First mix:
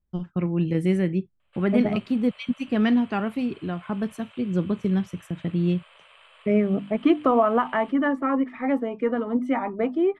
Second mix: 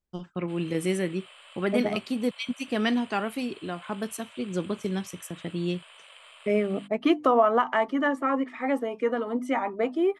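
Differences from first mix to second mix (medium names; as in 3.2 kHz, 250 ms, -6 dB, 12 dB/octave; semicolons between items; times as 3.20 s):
background: entry -1.05 s; master: add tone controls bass -11 dB, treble +13 dB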